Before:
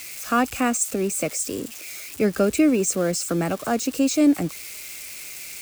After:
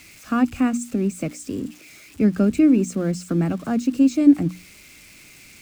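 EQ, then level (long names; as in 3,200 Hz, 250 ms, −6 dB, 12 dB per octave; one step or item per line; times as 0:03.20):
low-pass filter 3,200 Hz 6 dB per octave
low shelf with overshoot 350 Hz +8.5 dB, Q 1.5
mains-hum notches 60/120/180/240/300 Hz
−4.0 dB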